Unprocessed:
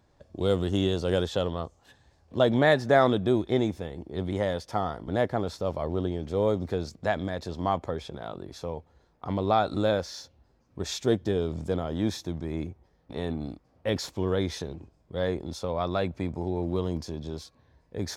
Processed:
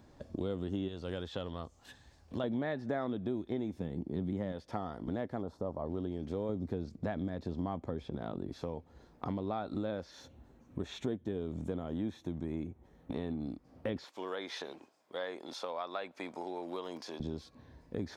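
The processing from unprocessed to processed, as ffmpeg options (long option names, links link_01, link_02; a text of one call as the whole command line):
ffmpeg -i in.wav -filter_complex "[0:a]asettb=1/sr,asplit=3[link_01][link_02][link_03];[link_01]atrim=end=0.884[link_04];[link_02]atrim=start=0.88:end=2.44,asetpts=PTS-STARTPTS,afade=type=in:duration=0.004:curve=qsin,afade=type=out:start_time=1.556:duration=0.004:curve=qsin,equalizer=frequency=290:width=0.33:gain=-8[link_05];[link_03]atrim=start=2.436[link_06];[link_04][link_05]acrossfade=duration=0.004:curve1=hsin:curve2=qsin[link_07];[link_07][link_06]acrossfade=duration=0.004:curve1=qsin:curve2=hsin,asettb=1/sr,asplit=3[link_08][link_09][link_10];[link_08]atrim=end=3.804[link_11];[link_09]atrim=start=3.8:end=4.52,asetpts=PTS-STARTPTS,afade=type=in:duration=0.004:curve=qsin,afade=type=out:start_time=0.716:duration=0.004:curve=qsin,equalizer=frequency=160:width=0.78:gain=9[link_12];[link_10]atrim=start=4.516[link_13];[link_11][link_12]acrossfade=duration=0.004:curve1=hsin:curve2=qsin[link_14];[link_14][link_13]acrossfade=duration=0.004:curve1=qsin:curve2=hsin,asplit=3[link_15][link_16][link_17];[link_15]afade=type=out:start_time=5.41:duration=0.02[link_18];[link_16]highshelf=frequency=1500:width_type=q:width=1.5:gain=-12,afade=type=in:start_time=5.41:duration=0.02,afade=type=out:start_time=5.85:duration=0.02[link_19];[link_17]afade=type=in:start_time=5.85:duration=0.02[link_20];[link_18][link_19][link_20]amix=inputs=3:normalize=0,asettb=1/sr,asplit=3[link_21][link_22][link_23];[link_21]atrim=end=6.494[link_24];[link_22]atrim=start=6.49:end=8.53,asetpts=PTS-STARTPTS,afade=type=in:duration=0.004:curve=qsin,afade=type=out:start_time=2.036:duration=0.004:curve=qsin,lowshelf=frequency=440:gain=7[link_25];[link_23]atrim=start=8.526[link_26];[link_24][link_25]acrossfade=duration=0.004:curve1=hsin:curve2=qsin[link_27];[link_27][link_26]acrossfade=duration=0.004:curve1=qsin:curve2=hsin,asettb=1/sr,asplit=3[link_28][link_29][link_30];[link_28]atrim=end=10.114[link_31];[link_29]atrim=start=10.11:end=13.15,asetpts=PTS-STARTPTS,afade=type=in:duration=0.004:curve=qsin,afade=type=out:start_time=3.036:duration=0.004:curve=qsin,equalizer=frequency=4900:width=5.6:gain=-14[link_32];[link_30]atrim=start=13.146[link_33];[link_31][link_32]acrossfade=duration=0.004:curve1=hsin:curve2=qsin[link_34];[link_34][link_33]acrossfade=duration=0.004:curve1=qsin:curve2=hsin,asettb=1/sr,asplit=3[link_35][link_36][link_37];[link_35]atrim=end=14.044[link_38];[link_36]atrim=start=14.04:end=17.2,asetpts=PTS-STARTPTS,afade=type=in:duration=0.004:curve=qsin,afade=type=out:start_time=3.156:duration=0.004:curve=qsin,highpass=780[link_39];[link_37]atrim=start=17.196[link_40];[link_38][link_39]acrossfade=duration=0.004:curve1=hsin:curve2=qsin[link_41];[link_41][link_40]acrossfade=duration=0.004:curve1=qsin:curve2=hsin,acrossover=split=3900[link_42][link_43];[link_43]acompressor=threshold=-57dB:ratio=4:attack=1:release=60[link_44];[link_42][link_44]amix=inputs=2:normalize=0,equalizer=frequency=250:width=1.5:gain=7.5,acompressor=threshold=-40dB:ratio=4,volume=3.5dB" out.wav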